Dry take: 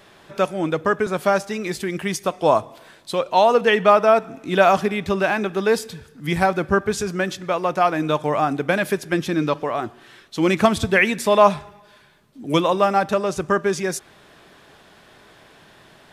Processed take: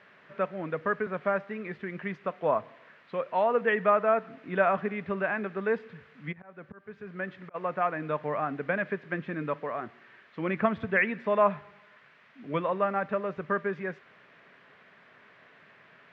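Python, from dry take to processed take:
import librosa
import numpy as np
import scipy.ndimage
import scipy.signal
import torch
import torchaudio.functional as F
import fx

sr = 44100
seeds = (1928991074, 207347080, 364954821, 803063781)

y = fx.dmg_noise_colour(x, sr, seeds[0], colour='blue', level_db=-33.0)
y = fx.auto_swell(y, sr, attack_ms=725.0, at=(6.31, 7.54), fade=0.02)
y = fx.cabinet(y, sr, low_hz=150.0, low_slope=12, high_hz=2200.0, hz=(330.0, 810.0, 1800.0), db=(-8, -6, 3))
y = y * librosa.db_to_amplitude(-8.0)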